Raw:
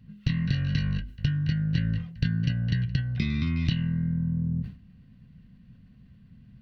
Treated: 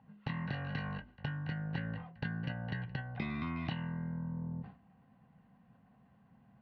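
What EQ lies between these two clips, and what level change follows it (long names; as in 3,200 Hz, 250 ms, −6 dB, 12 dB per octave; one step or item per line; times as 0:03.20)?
resonant band-pass 830 Hz, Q 6.3
high-frequency loss of the air 120 metres
+18.0 dB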